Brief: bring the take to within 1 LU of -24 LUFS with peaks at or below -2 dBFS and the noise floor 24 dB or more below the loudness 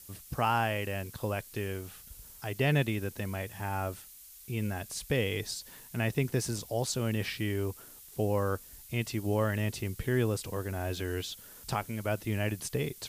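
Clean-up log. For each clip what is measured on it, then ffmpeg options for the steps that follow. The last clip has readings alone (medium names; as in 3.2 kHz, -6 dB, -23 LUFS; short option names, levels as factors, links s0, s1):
noise floor -52 dBFS; noise floor target -57 dBFS; loudness -33.0 LUFS; peak level -15.5 dBFS; loudness target -24.0 LUFS
-> -af "afftdn=nr=6:nf=-52"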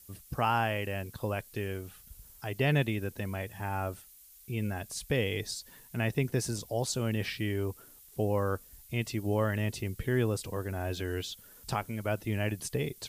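noise floor -55 dBFS; noise floor target -57 dBFS
-> -af "afftdn=nr=6:nf=-55"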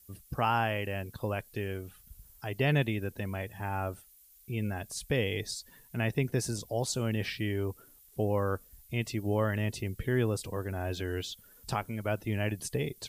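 noise floor -59 dBFS; loudness -33.0 LUFS; peak level -15.5 dBFS; loudness target -24.0 LUFS
-> -af "volume=2.82"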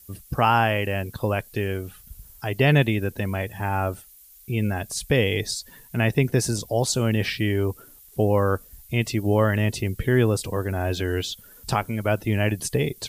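loudness -24.0 LUFS; peak level -6.5 dBFS; noise floor -50 dBFS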